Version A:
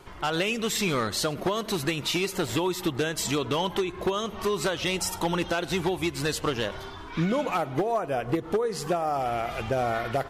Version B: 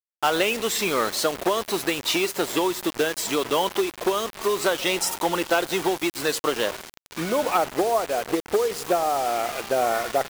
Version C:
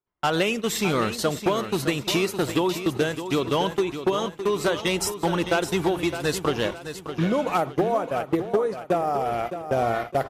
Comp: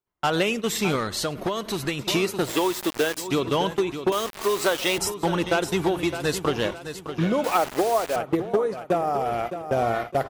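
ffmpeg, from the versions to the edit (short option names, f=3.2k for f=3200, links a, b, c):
-filter_complex "[1:a]asplit=3[a][b][c];[2:a]asplit=5[d][e][f][g][h];[d]atrim=end=0.962[i];[0:a]atrim=start=0.958:end=1.992[j];[e]atrim=start=1.988:end=2.57[k];[a]atrim=start=2.41:end=3.29[l];[f]atrim=start=3.13:end=4.122[m];[b]atrim=start=4.118:end=4.982[n];[g]atrim=start=4.978:end=7.442[o];[c]atrim=start=7.438:end=8.162[p];[h]atrim=start=8.158[q];[i][j]acrossfade=d=0.004:c1=hsin:c2=hsin[r];[r][k]acrossfade=d=0.004:c1=hsin:c2=hsin[s];[s][l]acrossfade=d=0.16:c1=tri:c2=tri[t];[t][m]acrossfade=d=0.16:c1=tri:c2=tri[u];[u][n]acrossfade=d=0.004:c1=hsin:c2=hsin[v];[v][o]acrossfade=d=0.004:c1=hsin:c2=hsin[w];[w][p]acrossfade=d=0.004:c1=hsin:c2=hsin[x];[x][q]acrossfade=d=0.004:c1=hsin:c2=hsin"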